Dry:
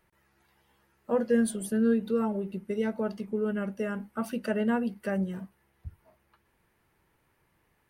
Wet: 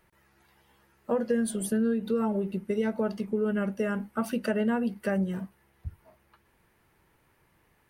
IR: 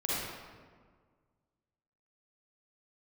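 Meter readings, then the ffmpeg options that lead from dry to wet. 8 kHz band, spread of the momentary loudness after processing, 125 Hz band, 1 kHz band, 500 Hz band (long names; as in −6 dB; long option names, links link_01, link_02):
+2.0 dB, 17 LU, +2.5 dB, +1.0 dB, +0.5 dB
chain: -af "acompressor=threshold=-27dB:ratio=6,volume=4dB"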